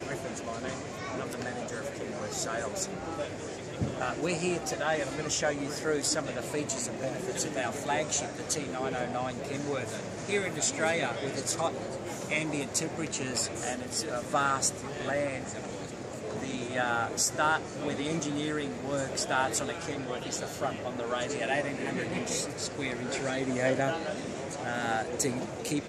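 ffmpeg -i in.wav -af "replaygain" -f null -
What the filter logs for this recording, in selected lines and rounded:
track_gain = +12.6 dB
track_peak = 0.147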